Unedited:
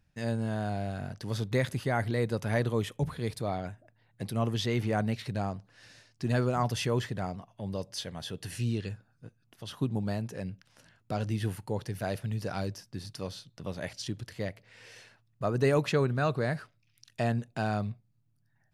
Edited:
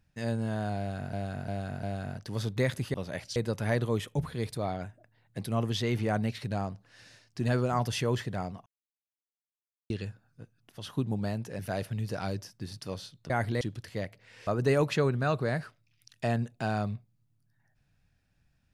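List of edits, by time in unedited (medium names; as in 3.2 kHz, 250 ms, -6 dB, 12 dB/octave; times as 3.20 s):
0.78–1.13 s: loop, 4 plays
1.89–2.20 s: swap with 13.63–14.05 s
7.50–8.74 s: mute
10.43–11.92 s: delete
14.91–15.43 s: delete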